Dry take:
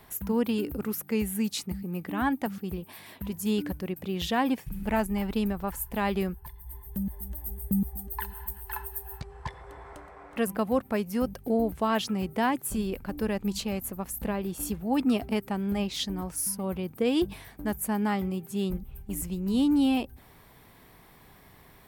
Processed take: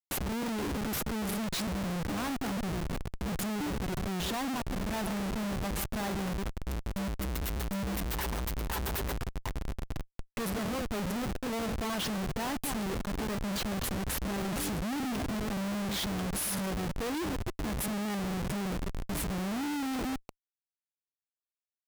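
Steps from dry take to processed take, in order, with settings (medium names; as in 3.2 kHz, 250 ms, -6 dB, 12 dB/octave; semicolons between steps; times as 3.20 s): chunks repeated in reverse 140 ms, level -12 dB; Schmitt trigger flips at -37.5 dBFS; trim -3 dB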